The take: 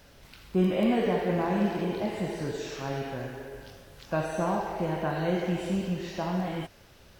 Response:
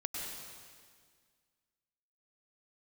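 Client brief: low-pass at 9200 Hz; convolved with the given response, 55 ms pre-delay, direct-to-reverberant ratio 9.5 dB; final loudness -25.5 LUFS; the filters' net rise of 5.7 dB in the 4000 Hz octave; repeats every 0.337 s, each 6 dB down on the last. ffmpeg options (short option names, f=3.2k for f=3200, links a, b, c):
-filter_complex "[0:a]lowpass=9.2k,equalizer=f=4k:t=o:g=8,aecho=1:1:337|674|1011|1348|1685|2022:0.501|0.251|0.125|0.0626|0.0313|0.0157,asplit=2[a][b];[1:a]atrim=start_sample=2205,adelay=55[c];[b][c]afir=irnorm=-1:irlink=0,volume=-11.5dB[d];[a][d]amix=inputs=2:normalize=0,volume=2.5dB"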